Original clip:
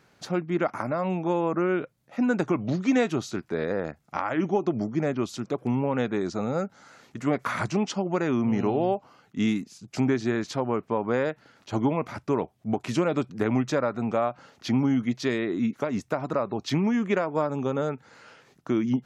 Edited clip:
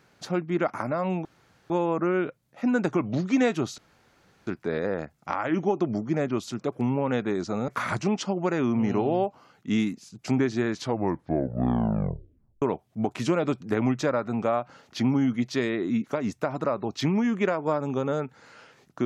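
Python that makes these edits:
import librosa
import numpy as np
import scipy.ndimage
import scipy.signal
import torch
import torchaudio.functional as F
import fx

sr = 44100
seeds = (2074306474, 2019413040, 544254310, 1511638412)

y = fx.edit(x, sr, fx.insert_room_tone(at_s=1.25, length_s=0.45),
    fx.insert_room_tone(at_s=3.33, length_s=0.69),
    fx.cut(start_s=6.54, length_s=0.83),
    fx.tape_stop(start_s=10.44, length_s=1.87), tone=tone)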